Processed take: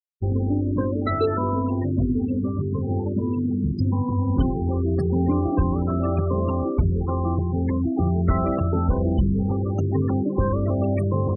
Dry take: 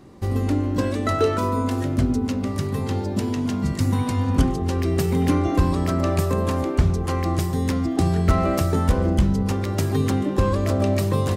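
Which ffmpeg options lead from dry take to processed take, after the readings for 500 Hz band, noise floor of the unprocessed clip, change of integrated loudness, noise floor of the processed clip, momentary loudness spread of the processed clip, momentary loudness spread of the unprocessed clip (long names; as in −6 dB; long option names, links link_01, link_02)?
−1.5 dB, −27 dBFS, −1.0 dB, −26 dBFS, 3 LU, 4 LU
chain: -filter_complex "[0:a]afftfilt=real='re*gte(hypot(re,im),0.0891)':imag='im*gte(hypot(re,im),0.0891)':win_size=1024:overlap=0.75,asplit=2[link_01][link_02];[link_02]alimiter=limit=-17.5dB:level=0:latency=1:release=131,volume=1.5dB[link_03];[link_01][link_03]amix=inputs=2:normalize=0,bandreject=frequency=630:width=12,volume=-5.5dB"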